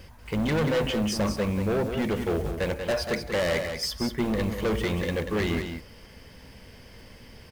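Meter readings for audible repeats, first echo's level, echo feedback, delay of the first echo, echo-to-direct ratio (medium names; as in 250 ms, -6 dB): 1, -7.0 dB, no regular repeats, 187 ms, -7.0 dB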